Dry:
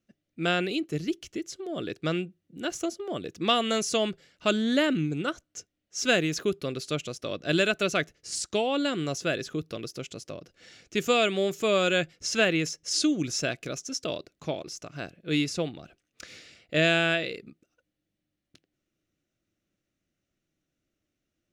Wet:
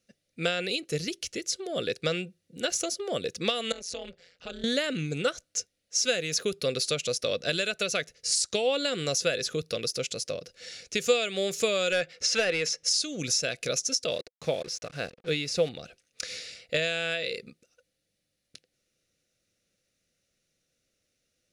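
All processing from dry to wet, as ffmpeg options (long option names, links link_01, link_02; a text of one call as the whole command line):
ffmpeg -i in.wav -filter_complex "[0:a]asettb=1/sr,asplit=3[link_01][link_02][link_03];[link_01]atrim=end=3.724[link_04];[link_02]atrim=start=3.72:end=4.64,asetpts=PTS-STARTPTS,afade=type=in:duration=0.004:curve=qsin,afade=type=out:start_time=0.916:duration=0.004:curve=qsin,aemphasis=mode=reproduction:type=50fm,acompressor=threshold=-42dB:ratio=2.5:attack=3.2:release=140:knee=1:detection=peak,tremolo=f=180:d=0.947[link_05];[link_03]atrim=start=4.636[link_06];[link_04][link_05]acrossfade=duration=0.004:curve1=hsin:curve2=qsin[link_07];[link_07][link_06]acrossfade=duration=0.004:curve1=qsin:curve2=hsin,asettb=1/sr,asplit=3[link_08][link_09][link_10];[link_08]atrim=end=11.924[link_11];[link_09]atrim=start=11.92:end=12.84,asetpts=PTS-STARTPTS,afade=type=in:duration=0.004:curve=qsin,afade=type=out:start_time=0.916:duration=0.004:curve=qsin,highshelf=frequency=3300:gain=-4.5,asplit=2[link_12][link_13];[link_13]highpass=frequency=720:poles=1,volume=16dB,asoftclip=type=tanh:threshold=-11.5dB[link_14];[link_12][link_14]amix=inputs=2:normalize=0,lowpass=frequency=2300:poles=1,volume=-6dB[link_15];[link_10]atrim=start=12.836[link_16];[link_11][link_15]acrossfade=duration=0.004:curve1=hsin:curve2=qsin[link_17];[link_17][link_16]acrossfade=duration=0.004:curve1=qsin:curve2=hsin,asettb=1/sr,asplit=3[link_18][link_19][link_20];[link_18]atrim=end=14.114[link_21];[link_19]atrim=start=14.11:end=15.69,asetpts=PTS-STARTPTS,afade=type=in:duration=0.004:curve=qsin,afade=type=out:start_time=1.576:duration=0.004:curve=qsin,acrusher=bits=7:mix=0:aa=0.5,lowpass=frequency=2800:poles=1[link_22];[link_20]atrim=start=15.686[link_23];[link_21][link_22]acrossfade=duration=0.004:curve1=hsin:curve2=qsin[link_24];[link_24][link_23]acrossfade=duration=0.004:curve1=qsin:curve2=hsin,equalizer=frequency=4500:width=0.53:gain=12.5,acompressor=threshold=-24dB:ratio=10,equalizer=frequency=315:width_type=o:width=0.33:gain=-8,equalizer=frequency=500:width_type=o:width=0.33:gain=11,equalizer=frequency=1000:width_type=o:width=0.33:gain=-6,equalizer=frequency=3150:width_type=o:width=0.33:gain=-5,equalizer=frequency=10000:width_type=o:width=0.33:gain=10" out.wav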